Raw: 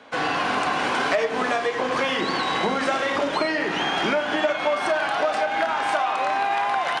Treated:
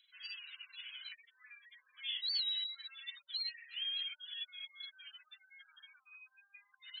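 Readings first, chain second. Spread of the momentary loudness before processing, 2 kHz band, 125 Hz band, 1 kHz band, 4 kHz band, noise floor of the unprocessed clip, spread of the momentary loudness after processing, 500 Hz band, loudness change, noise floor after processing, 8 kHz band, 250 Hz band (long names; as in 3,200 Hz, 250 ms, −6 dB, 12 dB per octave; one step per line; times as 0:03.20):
1 LU, −26.5 dB, below −40 dB, below −40 dB, −8.5 dB, −27 dBFS, 23 LU, below −40 dB, −17.0 dB, −77 dBFS, below −40 dB, below −40 dB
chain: gate on every frequency bin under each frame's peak −15 dB strong
inverse Chebyshev high-pass filter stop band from 740 Hz, stop band 80 dB
level +4.5 dB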